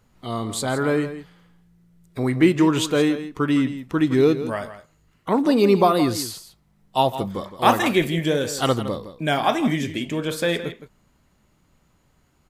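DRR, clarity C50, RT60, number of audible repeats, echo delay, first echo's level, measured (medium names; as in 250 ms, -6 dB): no reverb, no reverb, no reverb, 1, 164 ms, -12.5 dB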